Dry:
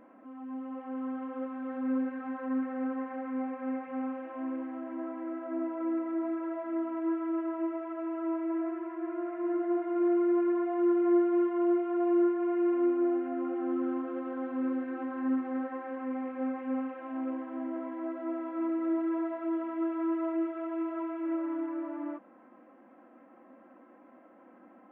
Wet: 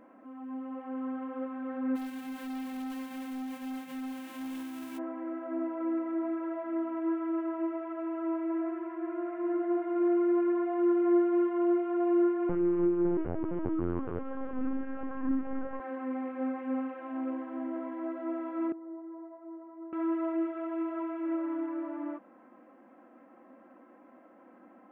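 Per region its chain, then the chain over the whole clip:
1.95–4.97 s: formants flattened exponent 0.3 + peaking EQ 1.2 kHz -5.5 dB 2.2 oct + hard clipper -35.5 dBFS
12.49–15.80 s: frequency-shifting echo 165 ms, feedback 43%, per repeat +64 Hz, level -14 dB + LPC vocoder at 8 kHz pitch kept
18.72–19.93 s: ladder band-pass 490 Hz, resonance 65% + comb 1 ms, depth 63%
whole clip: none

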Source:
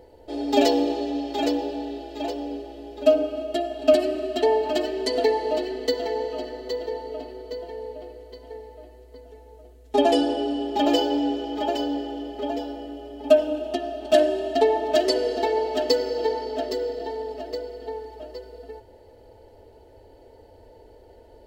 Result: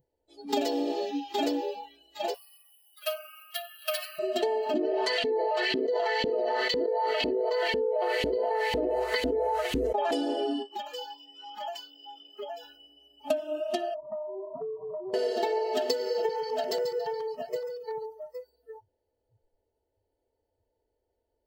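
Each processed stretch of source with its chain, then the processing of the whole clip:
2.34–4.19 s: inverse Chebyshev high-pass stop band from 210 Hz, stop band 70 dB + careless resampling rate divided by 3×, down filtered, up hold
4.74–10.11 s: treble shelf 2.1 kHz +9.5 dB + LFO band-pass saw up 2 Hz 220–2900 Hz + level flattener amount 100%
10.62–12.63 s: compression 10:1, threshold -29 dBFS + brick-wall FIR high-pass 170 Hz
13.94–15.14 s: Chebyshev low-pass 610 Hz, order 5 + compression 10:1, threshold -31 dBFS + loudspeaker Doppler distortion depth 0.25 ms
16.22–18.49 s: LFO notch square 7.1 Hz 320–4300 Hz + feedback delay 139 ms, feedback 28%, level -8.5 dB
whole clip: spectral noise reduction 30 dB; treble shelf 9.9 kHz +6.5 dB; compression 16:1, threshold -24 dBFS

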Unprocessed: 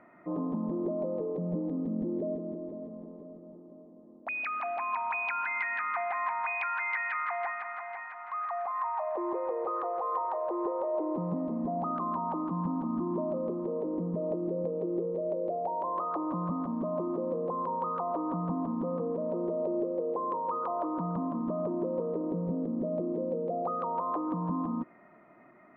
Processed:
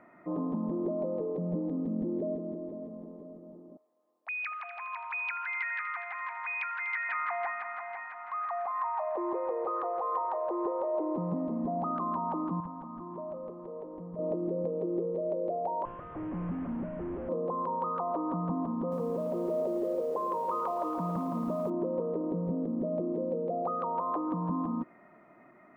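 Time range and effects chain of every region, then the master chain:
3.77–7.09 s: high-pass 1.5 kHz + delay 246 ms -11 dB
12.60–14.19 s: low-pass 1.9 kHz 6 dB/octave + peaking EQ 270 Hz -14 dB 1.9 oct
15.85–17.29 s: one-bit delta coder 16 kbps, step -52 dBFS + low-pass 2.2 kHz
18.64–21.70 s: band-stop 290 Hz, Q 7.8 + bit-crushed delay 277 ms, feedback 55%, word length 9-bit, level -9 dB
whole clip: none

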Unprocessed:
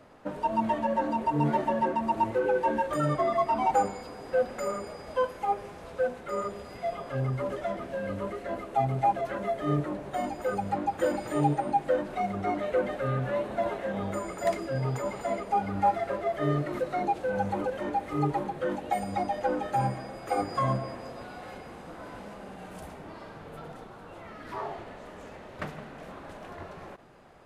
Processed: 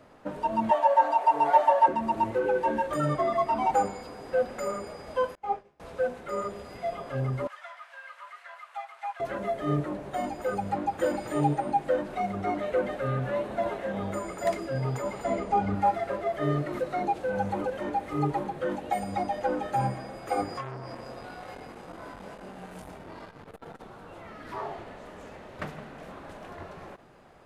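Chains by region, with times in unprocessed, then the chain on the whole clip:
0.71–1.88 s: resonant high-pass 740 Hz, resonance Q 3.1 + comb 6.9 ms, depth 78%
5.35–5.80 s: expander -32 dBFS + distance through air 71 m + detune thickener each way 27 cents
7.47–9.20 s: inverse Chebyshev high-pass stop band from 310 Hz, stop band 60 dB + treble shelf 4.8 kHz -9.5 dB
15.24–15.75 s: low-pass 8.6 kHz 24 dB/octave + bass shelf 360 Hz +7 dB + doubling 27 ms -11 dB
20.54–23.83 s: compression 2.5:1, threshold -34 dBFS + doubling 22 ms -3.5 dB + transformer saturation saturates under 910 Hz
whole clip: none

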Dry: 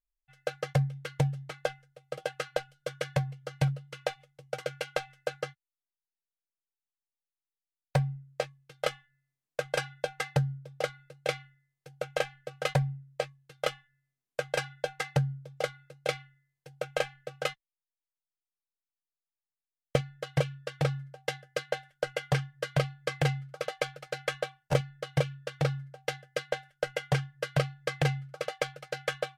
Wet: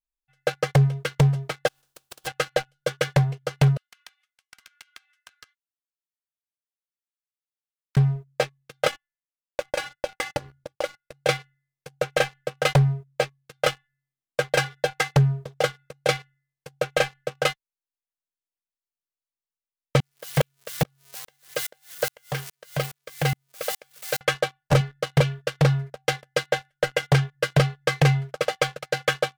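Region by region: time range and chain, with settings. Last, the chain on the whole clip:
1.67–2.26 s: spectral contrast reduction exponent 0.31 + peaking EQ 2.1 kHz -7.5 dB 0.34 oct + compression 16:1, threshold -46 dBFS
3.77–7.97 s: steep high-pass 1.1 kHz + compression, threshold -51 dBFS
8.87–11.12 s: gate -50 dBFS, range -22 dB + comb 3.5 ms, depth 88% + compression 2.5:1, threshold -37 dBFS
20.00–24.21 s: zero-crossing glitches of -29 dBFS + bass shelf 230 Hz -5 dB + sawtooth tremolo in dB swelling 2.4 Hz, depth 30 dB
whole clip: dynamic bell 220 Hz, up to +4 dB, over -45 dBFS, Q 1.9; waveshaping leveller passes 3

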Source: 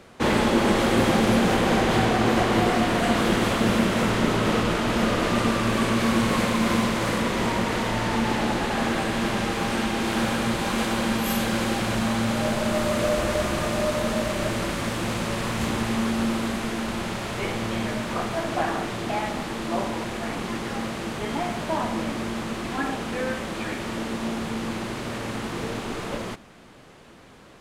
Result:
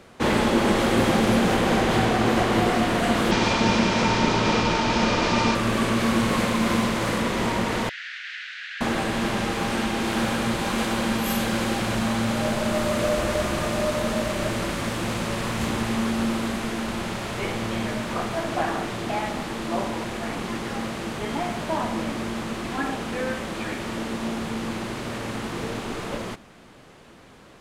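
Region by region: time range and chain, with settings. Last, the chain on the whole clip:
3.31–5.55 s: resonant low-pass 5.5 kHz, resonance Q 2.3 + small resonant body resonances 910/2400 Hz, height 14 dB, ringing for 95 ms
7.89–8.81 s: steep high-pass 1.5 kHz 72 dB/octave + distance through air 200 m
whole clip: none

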